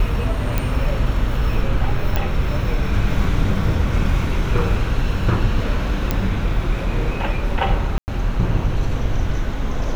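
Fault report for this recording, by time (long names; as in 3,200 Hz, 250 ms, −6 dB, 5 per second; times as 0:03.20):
0:00.58: click −7 dBFS
0:02.16: click −7 dBFS
0:06.11: click −5 dBFS
0:07.98–0:08.08: drop-out 99 ms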